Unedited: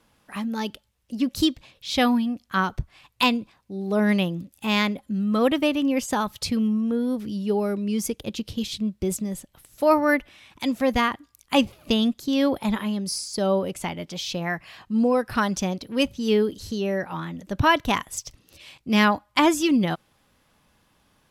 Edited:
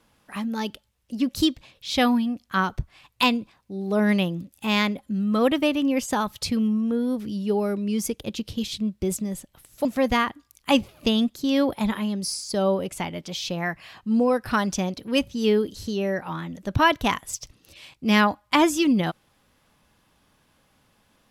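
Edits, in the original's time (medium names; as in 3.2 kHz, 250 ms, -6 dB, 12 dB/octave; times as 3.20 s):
9.85–10.69 s: delete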